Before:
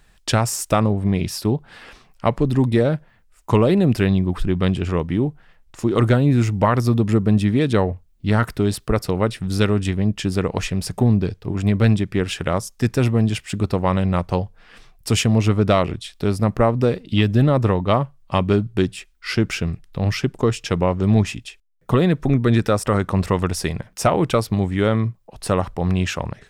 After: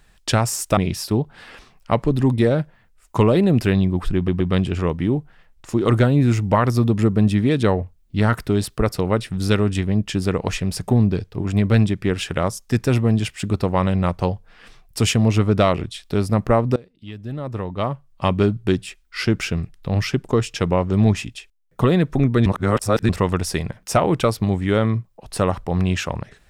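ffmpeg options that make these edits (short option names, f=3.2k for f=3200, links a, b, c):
-filter_complex "[0:a]asplit=7[a][b][c][d][e][f][g];[a]atrim=end=0.772[h];[b]atrim=start=1.108:end=4.622[i];[c]atrim=start=4.498:end=4.622[j];[d]atrim=start=4.498:end=16.86,asetpts=PTS-STARTPTS,afade=t=out:st=12.358:d=0.004:c=hsin:silence=0.0749894[k];[e]atrim=start=16.86:end=22.562,asetpts=PTS-STARTPTS,afade=t=in:d=1.54:c=qua:silence=0.0749894[l];[f]atrim=start=22.558:end=23.192,asetpts=PTS-STARTPTS,areverse[m];[g]atrim=start=23.188[n];[h][i]acrossfade=d=0.004:c1=hsin:c2=hsin[o];[o][j]acrossfade=d=0.004:c1=hsin:c2=hsin[p];[k][l]concat=n=2:v=0:a=1[q];[p][q]acrossfade=d=0.004:c1=hsin:c2=hsin[r];[r][m]acrossfade=d=0.004:c1=hsin:c2=hsin[s];[s][n]acrossfade=d=0.004:c1=hsin:c2=hsin"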